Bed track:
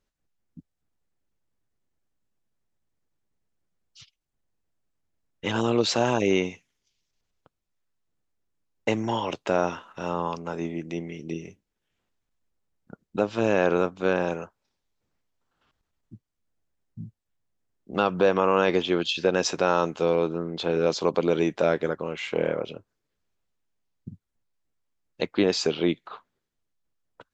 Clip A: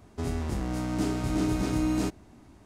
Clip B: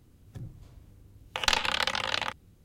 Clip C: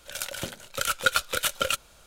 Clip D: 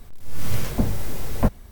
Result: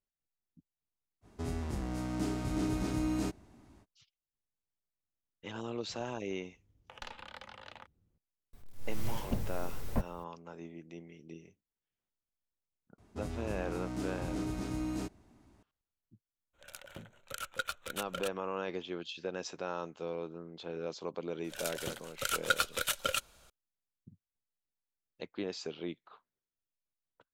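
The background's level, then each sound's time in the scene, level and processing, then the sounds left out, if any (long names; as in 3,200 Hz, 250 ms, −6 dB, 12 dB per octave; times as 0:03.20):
bed track −16 dB
0:01.21: mix in A −6 dB, fades 0.05 s
0:05.54: mix in B −16.5 dB + high-shelf EQ 2,200 Hz −11 dB
0:08.53: mix in D −12.5 dB
0:12.98: mix in A −9.5 dB
0:16.53: mix in C −13.5 dB, fades 0.02 s + adaptive Wiener filter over 9 samples
0:21.44: mix in C −6.5 dB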